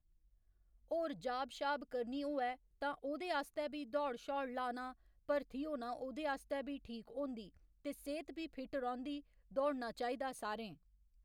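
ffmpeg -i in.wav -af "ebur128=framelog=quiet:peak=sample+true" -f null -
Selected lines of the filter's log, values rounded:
Integrated loudness:
  I:         -42.4 LUFS
  Threshold: -52.5 LUFS
Loudness range:
  LRA:         3.5 LU
  Threshold: -62.7 LUFS
  LRA low:   -44.7 LUFS
  LRA high:  -41.3 LUFS
Sample peak:
  Peak:      -25.6 dBFS
True peak:
  Peak:      -25.6 dBFS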